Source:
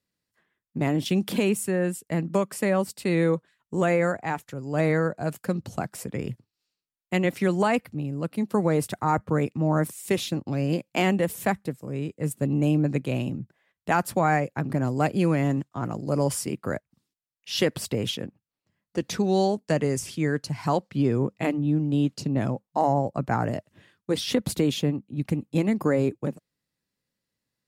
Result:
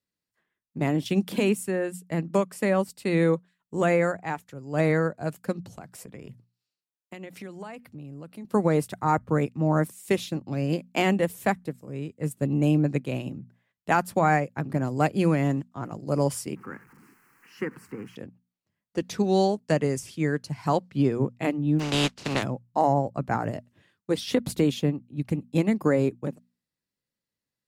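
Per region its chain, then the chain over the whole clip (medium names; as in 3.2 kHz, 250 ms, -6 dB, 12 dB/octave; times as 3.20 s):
5.61–8.45 s: high-pass 48 Hz + compression 5:1, threshold -31 dBFS
16.56–18.16 s: jump at every zero crossing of -34 dBFS + three-band isolator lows -21 dB, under 170 Hz, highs -16 dB, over 2.4 kHz + static phaser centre 1.5 kHz, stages 4
21.79–22.42 s: spectral contrast reduction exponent 0.37 + low-pass 5.3 kHz
whole clip: hum notches 60/120/180/240 Hz; upward expansion 1.5:1, over -34 dBFS; trim +1.5 dB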